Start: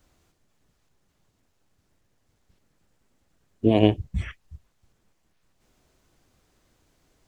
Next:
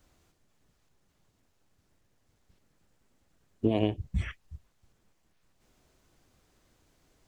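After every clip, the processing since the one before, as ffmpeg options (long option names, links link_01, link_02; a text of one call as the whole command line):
ffmpeg -i in.wav -af "acompressor=threshold=-20dB:ratio=6,volume=-1.5dB" out.wav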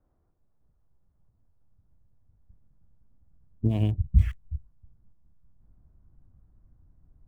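ffmpeg -i in.wav -filter_complex "[0:a]asubboost=boost=10.5:cutoff=140,acrossover=split=1300[link_01][link_02];[link_02]aeval=exprs='val(0)*gte(abs(val(0)),0.00376)':channel_layout=same[link_03];[link_01][link_03]amix=inputs=2:normalize=0,volume=-5dB" out.wav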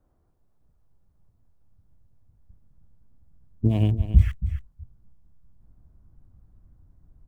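ffmpeg -i in.wav -af "aecho=1:1:277:0.251,volume=3.5dB" out.wav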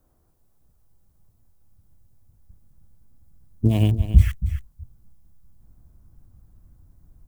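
ffmpeg -i in.wav -af "crystalizer=i=2.5:c=0,volume=2.5dB" out.wav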